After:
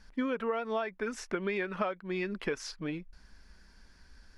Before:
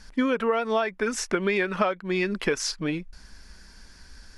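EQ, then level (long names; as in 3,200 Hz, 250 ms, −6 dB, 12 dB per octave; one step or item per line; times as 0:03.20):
parametric band 8,600 Hz −7.5 dB 1.8 octaves
−8.0 dB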